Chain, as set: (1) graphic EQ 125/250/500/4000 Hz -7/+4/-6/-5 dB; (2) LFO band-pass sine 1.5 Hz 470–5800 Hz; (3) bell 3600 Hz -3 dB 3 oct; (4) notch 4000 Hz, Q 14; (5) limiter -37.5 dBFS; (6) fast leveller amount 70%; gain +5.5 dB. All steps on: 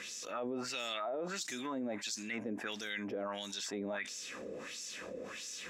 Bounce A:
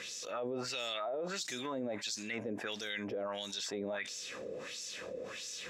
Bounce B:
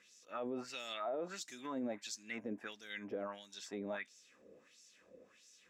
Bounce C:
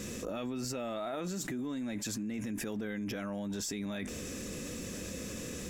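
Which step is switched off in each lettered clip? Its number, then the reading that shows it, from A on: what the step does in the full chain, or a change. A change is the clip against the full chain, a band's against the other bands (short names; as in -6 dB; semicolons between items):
1, 250 Hz band -2.0 dB; 6, crest factor change -2.0 dB; 2, 125 Hz band +12.5 dB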